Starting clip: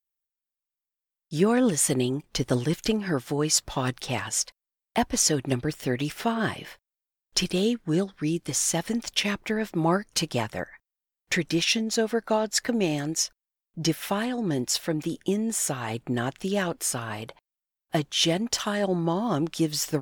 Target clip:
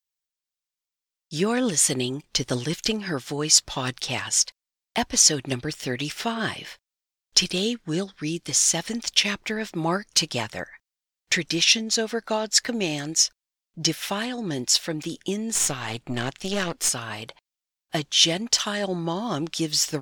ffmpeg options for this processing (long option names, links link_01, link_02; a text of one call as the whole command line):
ffmpeg -i in.wav -filter_complex "[0:a]asettb=1/sr,asplit=3[link_01][link_02][link_03];[link_01]atrim=end=15.554[link_04];[link_02]atrim=start=15.55:end=16.89,asetpts=PTS-STARTPTS,afade=type=in:duration=0.004:curve=qsin,afade=type=out:start_time=1.336:duration=0.004:curve=qsin,aeval=exprs='0.188*(cos(1*acos(clip(val(0)/0.188,-1,1)))-cos(1*PI/2))+0.0335*(cos(4*acos(clip(val(0)/0.188,-1,1)))-cos(4*PI/2))':channel_layout=same[link_05];[link_03]atrim=start=16.886[link_06];[link_04][link_05]acrossfade=duration=0.004:curve1=hsin:curve2=qsin[link_07];[link_07][link_06]acrossfade=duration=0.004:curve1=qsin:curve2=hsin,acrossover=split=6500[link_08][link_09];[link_08]crystalizer=i=5:c=0[link_10];[link_10][link_09]amix=inputs=2:normalize=0,volume=-2.5dB" out.wav